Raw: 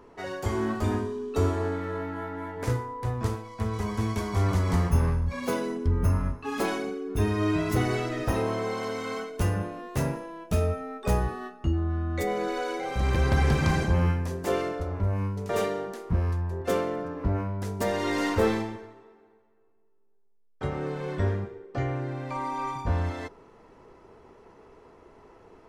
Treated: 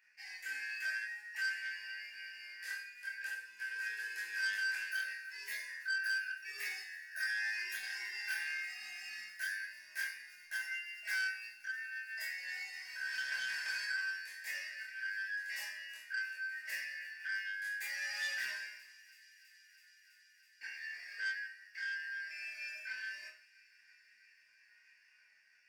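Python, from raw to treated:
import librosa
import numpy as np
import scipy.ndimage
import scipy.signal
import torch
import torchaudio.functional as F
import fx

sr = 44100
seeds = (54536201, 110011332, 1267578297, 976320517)

p1 = fx.band_shuffle(x, sr, order='3142')
p2 = scipy.signal.sosfilt(scipy.signal.butter(4, 400.0, 'highpass', fs=sr, output='sos'), p1)
p3 = fx.high_shelf(p2, sr, hz=7100.0, db=12.0)
p4 = fx.leveller(p3, sr, passes=1)
p5 = fx.chorus_voices(p4, sr, voices=2, hz=0.3, base_ms=24, depth_ms=1.6, mix_pct=50)
p6 = fx.resonator_bank(p5, sr, root=37, chord='sus4', decay_s=0.37)
p7 = p6 + fx.echo_wet_highpass(p6, sr, ms=327, feedback_pct=84, hz=2700.0, wet_db=-19.5, dry=0)
p8 = fx.transformer_sat(p7, sr, knee_hz=3100.0)
y = p8 * 10.0 ** (-2.0 / 20.0)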